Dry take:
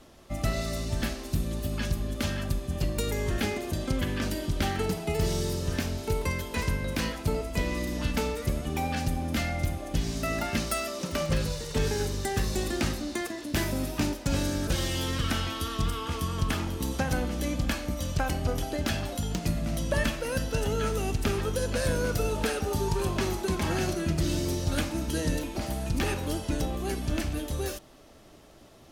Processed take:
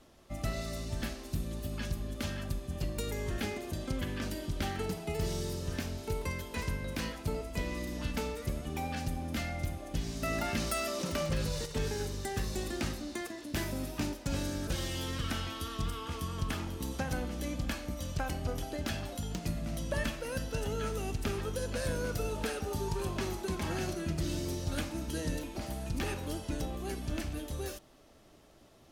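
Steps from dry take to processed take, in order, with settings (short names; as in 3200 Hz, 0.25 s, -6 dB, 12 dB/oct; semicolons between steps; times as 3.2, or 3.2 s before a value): 10.22–11.66 fast leveller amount 50%; gain -6.5 dB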